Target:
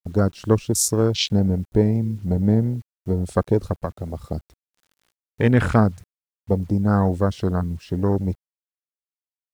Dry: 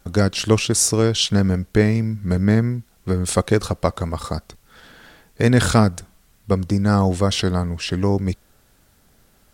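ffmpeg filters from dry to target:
ffmpeg -i in.wav -filter_complex "[0:a]afwtdn=0.0708,asettb=1/sr,asplit=3[link_01][link_02][link_03];[link_01]atrim=end=3.764[link_04];[link_02]atrim=start=3.76:end=4.2,asetpts=PTS-STARTPTS,afade=type=in:duration=0.004:curve=qsin,afade=type=out:start_time=0.436:duration=0.004:curve=qsin,acrossover=split=250|1100[link_05][link_06][link_07];[link_05]acompressor=threshold=-27dB:ratio=4[link_08];[link_06]acompressor=threshold=-27dB:ratio=4[link_09];[link_07]acompressor=threshold=-37dB:ratio=4[link_10];[link_08][link_09][link_10]amix=inputs=3:normalize=0[link_11];[link_03]atrim=start=4.196[link_12];[link_04][link_11]acrossfade=duration=0.004:curve1=hsin:curve2=qsin[link_13];[link_13][link_12]acrossfade=duration=0.004:curve1=qsin:curve2=hsin,acrusher=bits=8:mix=0:aa=0.000001,volume=-1.5dB" out.wav

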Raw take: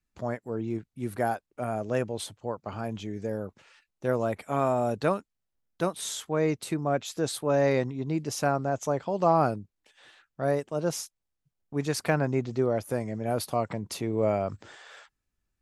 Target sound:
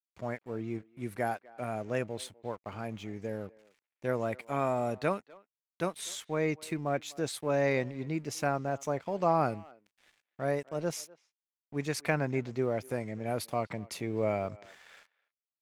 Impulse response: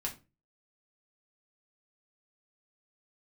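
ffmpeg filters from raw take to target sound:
-filter_complex "[0:a]aeval=exprs='sgn(val(0))*max(abs(val(0))-0.002,0)':channel_layout=same,equalizer=frequency=2200:width=2.4:gain=7,asplit=2[link_01][link_02];[link_02]adelay=250,highpass=300,lowpass=3400,asoftclip=type=hard:threshold=-18.5dB,volume=-22dB[link_03];[link_01][link_03]amix=inputs=2:normalize=0,volume=-4.5dB"

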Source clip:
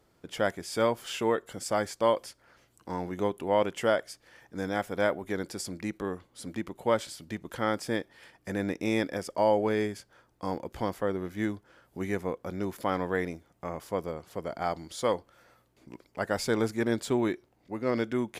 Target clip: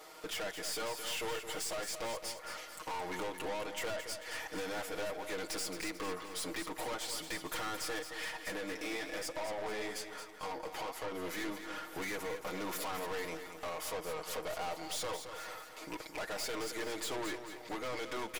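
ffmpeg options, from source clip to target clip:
ffmpeg -i in.wav -filter_complex "[0:a]highpass=620,bandreject=frequency=1600:width=12,aecho=1:1:6.4:0.89,acompressor=threshold=-45dB:ratio=4,asettb=1/sr,asplit=3[link_01][link_02][link_03];[link_01]atrim=end=8.504[link_04];[link_02]atrim=start=8.5:end=11.12,asetpts=PTS-STARTPTS,afade=type=in:duration=0.004:curve=qsin,afade=type=out:start_time=2.616:duration=0.004:curve=qsin,flanger=delay=5.3:depth=9.8:regen=53:speed=1.2:shape=triangular[link_05];[link_03]atrim=start=11.116[link_06];[link_04][link_05]acrossfade=duration=0.004:curve1=hsin:curve2=qsin[link_07];[link_07][link_06]acrossfade=duration=0.004:curve1=qsin:curve2=hsin,aeval=exprs='(tanh(501*val(0)+0.35)-tanh(0.35))/501':channel_layout=same,aecho=1:1:221|442|663|884|1105:0.355|0.163|0.0751|0.0345|0.0159,volume=17dB" out.wav

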